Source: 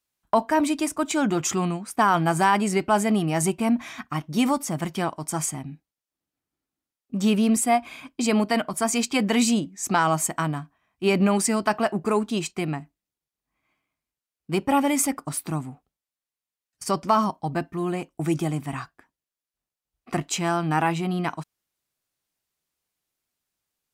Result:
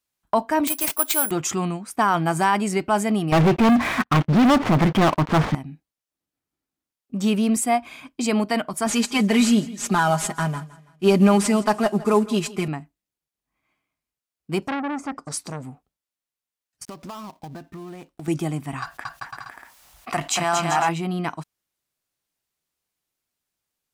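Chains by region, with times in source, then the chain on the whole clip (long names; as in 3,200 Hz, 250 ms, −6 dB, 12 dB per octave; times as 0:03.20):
0:00.67–0:01.31: high-pass filter 490 Hz + bad sample-rate conversion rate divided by 4×, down none, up zero stuff
0:03.32–0:05.55: variable-slope delta modulation 32 kbit/s + low-pass filter 2,000 Hz + leveller curve on the samples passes 5
0:08.86–0:12.68: variable-slope delta modulation 64 kbit/s + comb filter 4.9 ms, depth 80% + repeating echo 163 ms, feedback 39%, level −19 dB
0:14.62–0:15.63: treble cut that deepens with the level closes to 680 Hz, closed at −17 dBFS + high shelf with overshoot 4,200 Hz +10 dB, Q 1.5 + saturating transformer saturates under 1,400 Hz
0:16.85–0:18.28: gap after every zero crossing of 0.14 ms + downward compressor 8 to 1, threshold −33 dBFS
0:18.82–0:20.89: low shelf with overshoot 540 Hz −8.5 dB, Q 1.5 + bouncing-ball delay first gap 230 ms, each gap 0.7×, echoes 5 + envelope flattener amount 50%
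whole clip: no processing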